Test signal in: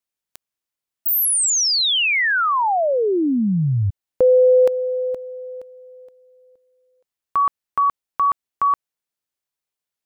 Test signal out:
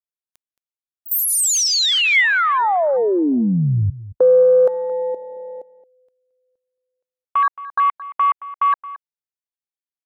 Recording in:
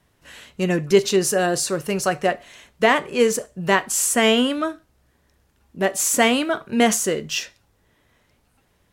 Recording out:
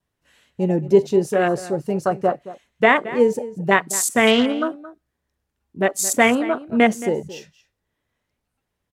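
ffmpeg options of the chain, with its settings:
-filter_complex "[0:a]afwtdn=0.0631,adynamicequalizer=threshold=0.0126:dfrequency=2100:dqfactor=6.8:tfrequency=2100:tqfactor=6.8:attack=5:release=100:ratio=0.375:range=2.5:mode=boostabove:tftype=bell,asplit=2[a][b];[b]adelay=221.6,volume=-16dB,highshelf=f=4k:g=-4.99[c];[a][c]amix=inputs=2:normalize=0,volume=1.5dB"

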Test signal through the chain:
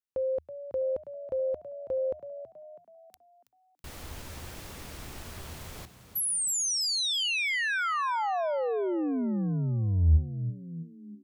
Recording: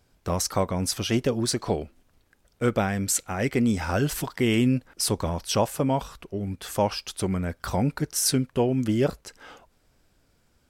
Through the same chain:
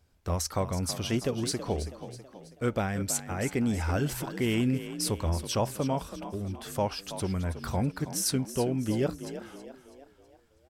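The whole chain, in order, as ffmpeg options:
-filter_complex "[0:a]equalizer=f=78:w=4.2:g=12.5,asplit=2[a][b];[b]asplit=5[c][d][e][f][g];[c]adelay=325,afreqshift=44,volume=-12dB[h];[d]adelay=650,afreqshift=88,volume=-18.7dB[i];[e]adelay=975,afreqshift=132,volume=-25.5dB[j];[f]adelay=1300,afreqshift=176,volume=-32.2dB[k];[g]adelay=1625,afreqshift=220,volume=-39dB[l];[h][i][j][k][l]amix=inputs=5:normalize=0[m];[a][m]amix=inputs=2:normalize=0,volume=-5.5dB"

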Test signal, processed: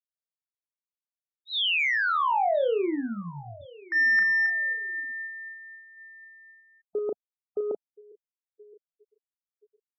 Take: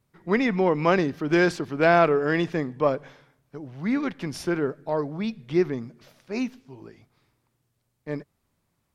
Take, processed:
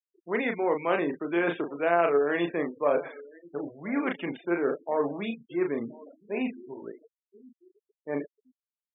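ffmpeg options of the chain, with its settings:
-filter_complex "[0:a]areverse,acompressor=threshold=-31dB:ratio=5,areverse,adynamicequalizer=threshold=0.00316:dfrequency=2400:dqfactor=1.2:tfrequency=2400:tqfactor=1.2:attack=5:release=100:ratio=0.375:range=2:mode=boostabove:tftype=bell,aresample=8000,aresample=44100,asplit=2[a][b];[b]adynamicsmooth=sensitivity=1.5:basefreq=610,volume=-0.5dB[c];[a][c]amix=inputs=2:normalize=0,highpass=400,asplit=2[d][e];[e]adelay=35,volume=-5dB[f];[d][f]amix=inputs=2:normalize=0,aecho=1:1:1025|2050:0.0794|0.0278,afftfilt=real='re*gte(hypot(re,im),0.00794)':imag='im*gte(hypot(re,im),0.00794)':win_size=1024:overlap=0.75,volume=4dB"

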